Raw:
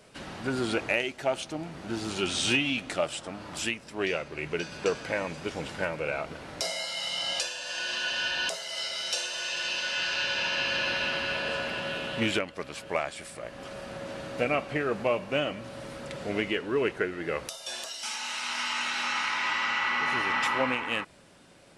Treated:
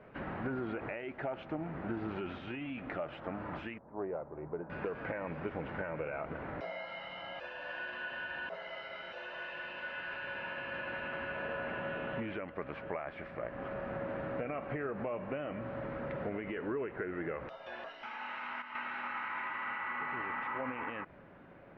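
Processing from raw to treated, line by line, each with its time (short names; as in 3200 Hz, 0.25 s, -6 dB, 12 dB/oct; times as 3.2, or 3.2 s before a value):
3.78–4.7 ladder low-pass 1100 Hz, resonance 40%
18.3–19.07 dip -11.5 dB, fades 0.32 s logarithmic
whole clip: limiter -22.5 dBFS; compressor, threshold -35 dBFS; LPF 2000 Hz 24 dB/oct; gain +1.5 dB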